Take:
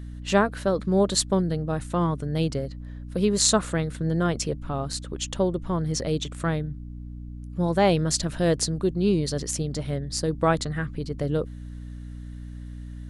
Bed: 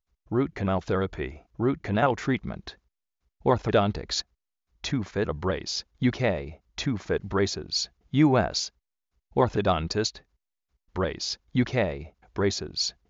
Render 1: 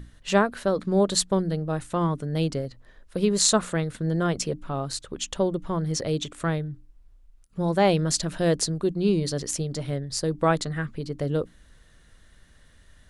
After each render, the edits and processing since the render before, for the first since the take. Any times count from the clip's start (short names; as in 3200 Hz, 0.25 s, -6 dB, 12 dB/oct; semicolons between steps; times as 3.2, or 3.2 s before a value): notches 60/120/180/240/300 Hz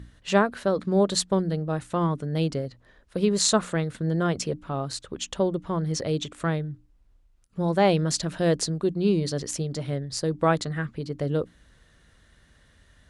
HPF 41 Hz; high shelf 9700 Hz -8.5 dB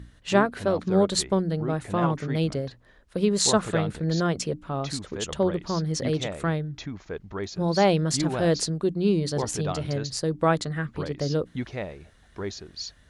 add bed -8 dB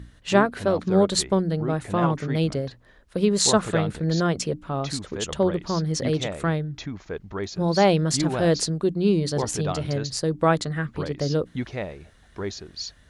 gain +2 dB